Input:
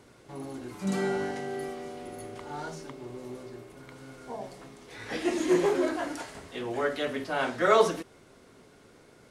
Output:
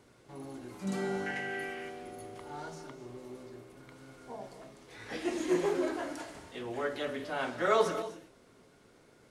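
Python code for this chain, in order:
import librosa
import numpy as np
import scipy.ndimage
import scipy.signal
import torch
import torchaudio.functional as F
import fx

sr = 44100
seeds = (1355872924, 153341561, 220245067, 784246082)

y = fx.band_shelf(x, sr, hz=2100.0, db=13.0, octaves=1.2, at=(1.26, 1.9))
y = fx.rev_gated(y, sr, seeds[0], gate_ms=290, shape='rising', drr_db=11.0)
y = y * 10.0 ** (-5.5 / 20.0)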